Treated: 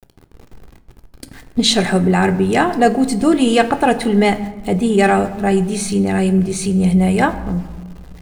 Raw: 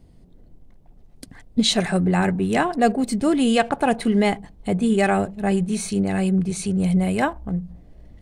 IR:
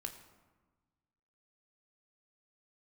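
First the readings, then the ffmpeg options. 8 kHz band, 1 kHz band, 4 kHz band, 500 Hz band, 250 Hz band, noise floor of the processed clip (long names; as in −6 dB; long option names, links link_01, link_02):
+5.5 dB, +6.0 dB, +5.5 dB, +6.5 dB, +5.0 dB, −48 dBFS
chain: -filter_complex "[0:a]acontrast=32,aeval=exprs='val(0)*gte(abs(val(0)),0.0126)':channel_layout=same,asplit=2[link_01][link_02];[1:a]atrim=start_sample=2205[link_03];[link_02][link_03]afir=irnorm=-1:irlink=0,volume=5dB[link_04];[link_01][link_04]amix=inputs=2:normalize=0,volume=-6dB"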